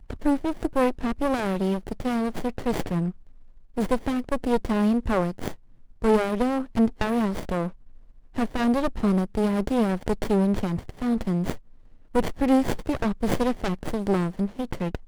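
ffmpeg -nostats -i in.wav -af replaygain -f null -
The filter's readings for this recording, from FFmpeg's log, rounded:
track_gain = +5.5 dB
track_peak = 0.291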